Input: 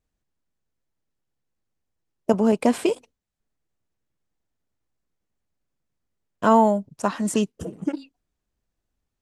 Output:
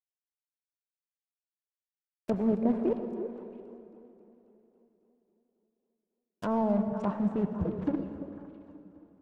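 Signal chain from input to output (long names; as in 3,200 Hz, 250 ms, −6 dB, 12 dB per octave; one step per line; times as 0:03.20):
low-shelf EQ 110 Hz +11.5 dB
notch filter 3,100 Hz, Q 19
reversed playback
downward compressor 4 to 1, threshold −27 dBFS, peak gain reduction 13.5 dB
reversed playback
log-companded quantiser 4 bits
treble cut that deepens with the level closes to 850 Hz, closed at −29.5 dBFS
echo through a band-pass that steps 168 ms, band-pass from 170 Hz, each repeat 1.4 octaves, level −5 dB
on a send at −9 dB: convolution reverb RT60 2.8 s, pre-delay 63 ms
on the sum: feedback echo with a swinging delay time 271 ms, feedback 65%, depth 127 cents, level −20 dB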